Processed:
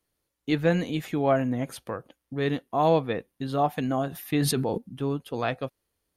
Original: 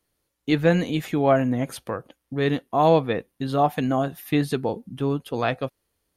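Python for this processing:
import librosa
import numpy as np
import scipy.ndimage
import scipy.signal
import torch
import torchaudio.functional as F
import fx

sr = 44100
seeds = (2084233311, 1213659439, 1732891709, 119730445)

y = fx.sustainer(x, sr, db_per_s=25.0, at=(4.09, 4.78))
y = F.gain(torch.from_numpy(y), -4.0).numpy()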